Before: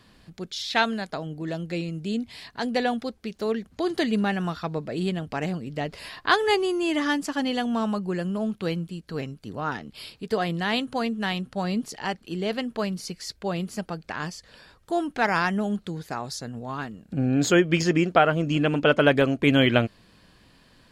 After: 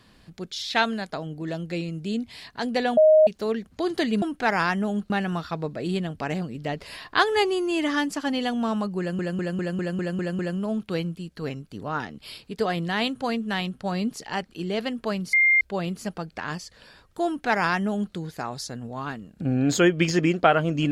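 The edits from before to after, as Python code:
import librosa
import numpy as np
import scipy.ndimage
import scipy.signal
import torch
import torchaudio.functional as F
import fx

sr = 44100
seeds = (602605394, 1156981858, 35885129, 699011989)

y = fx.edit(x, sr, fx.bleep(start_s=2.97, length_s=0.3, hz=623.0, db=-11.5),
    fx.stutter(start_s=8.11, slice_s=0.2, count=8),
    fx.bleep(start_s=13.05, length_s=0.28, hz=2110.0, db=-15.0),
    fx.duplicate(start_s=14.98, length_s=0.88, to_s=4.22), tone=tone)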